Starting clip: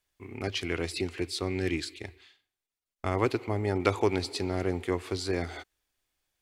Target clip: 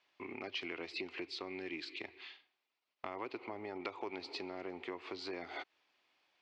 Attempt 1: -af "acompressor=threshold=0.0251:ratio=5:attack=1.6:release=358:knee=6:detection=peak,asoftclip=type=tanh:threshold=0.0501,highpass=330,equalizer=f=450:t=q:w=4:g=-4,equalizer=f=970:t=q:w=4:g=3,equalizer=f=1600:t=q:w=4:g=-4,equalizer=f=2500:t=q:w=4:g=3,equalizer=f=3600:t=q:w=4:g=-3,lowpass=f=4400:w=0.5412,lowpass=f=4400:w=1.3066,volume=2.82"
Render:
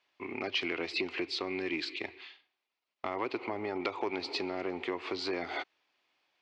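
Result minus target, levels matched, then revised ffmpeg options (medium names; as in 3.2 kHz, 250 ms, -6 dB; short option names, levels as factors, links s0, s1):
compression: peak gain reduction -9 dB
-af "acompressor=threshold=0.00668:ratio=5:attack=1.6:release=358:knee=6:detection=peak,asoftclip=type=tanh:threshold=0.0501,highpass=330,equalizer=f=450:t=q:w=4:g=-4,equalizer=f=970:t=q:w=4:g=3,equalizer=f=1600:t=q:w=4:g=-4,equalizer=f=2500:t=q:w=4:g=3,equalizer=f=3600:t=q:w=4:g=-3,lowpass=f=4400:w=0.5412,lowpass=f=4400:w=1.3066,volume=2.82"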